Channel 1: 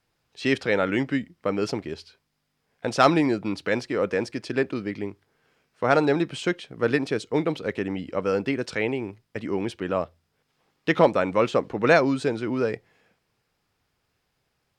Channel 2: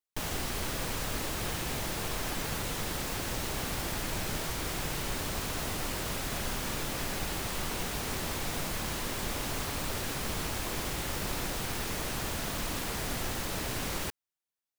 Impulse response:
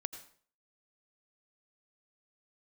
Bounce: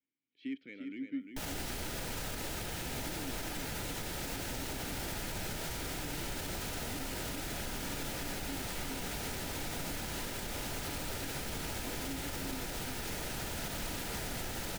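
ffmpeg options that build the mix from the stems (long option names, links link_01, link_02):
-filter_complex "[0:a]acompressor=threshold=-25dB:ratio=2.5,asplit=3[link_01][link_02][link_03];[link_01]bandpass=frequency=270:width_type=q:width=8,volume=0dB[link_04];[link_02]bandpass=frequency=2290:width_type=q:width=8,volume=-6dB[link_05];[link_03]bandpass=frequency=3010:width_type=q:width=8,volume=-9dB[link_06];[link_04][link_05][link_06]amix=inputs=3:normalize=0,adynamicsmooth=sensitivity=5.5:basefreq=5500,volume=-7.5dB,asplit=2[link_07][link_08];[link_08]volume=-6dB[link_09];[1:a]adelay=1200,volume=0dB[link_10];[link_09]aecho=0:1:349:1[link_11];[link_07][link_10][link_11]amix=inputs=3:normalize=0,asuperstop=centerf=1100:order=4:qfactor=6.6,alimiter=level_in=5dB:limit=-24dB:level=0:latency=1:release=92,volume=-5dB"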